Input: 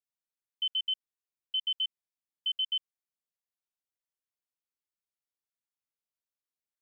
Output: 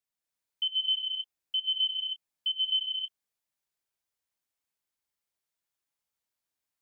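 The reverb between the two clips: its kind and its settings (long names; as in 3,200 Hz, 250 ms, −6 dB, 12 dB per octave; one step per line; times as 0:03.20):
reverb whose tail is shaped and stops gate 310 ms rising, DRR −2 dB
level +2 dB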